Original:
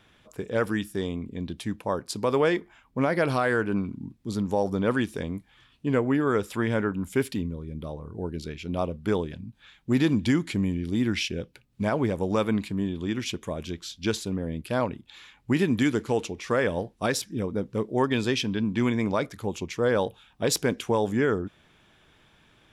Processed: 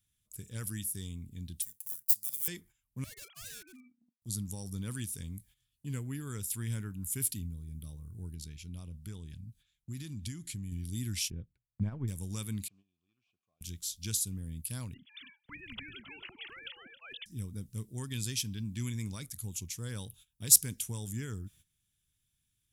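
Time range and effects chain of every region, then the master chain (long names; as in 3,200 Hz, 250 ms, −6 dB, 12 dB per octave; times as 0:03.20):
0:01.62–0:02.48: gap after every zero crossing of 0.052 ms + first-order pre-emphasis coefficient 0.97
0:03.04–0:04.22: three sine waves on the formant tracks + high-pass filter 1,000 Hz 6 dB per octave + hard clipping −32.5 dBFS
0:08.34–0:10.72: high-shelf EQ 8,200 Hz −10 dB + downward compressor 2 to 1, threshold −31 dBFS
0:11.30–0:12.08: low-pass filter 1,200 Hz + transient designer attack +8 dB, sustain −7 dB
0:12.68–0:13.61: linear delta modulator 64 kbit/s, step −44 dBFS + formant filter a + high-frequency loss of the air 140 metres
0:14.94–0:17.26: three sine waves on the formant tracks + single-tap delay 271 ms −17 dB + every bin compressed towards the loudest bin 4 to 1
whole clip: drawn EQ curve 110 Hz 0 dB, 600 Hz −28 dB, 4,700 Hz −5 dB, 10,000 Hz +7 dB; noise gate −56 dBFS, range −14 dB; high-shelf EQ 5,600 Hz +11.5 dB; level −3 dB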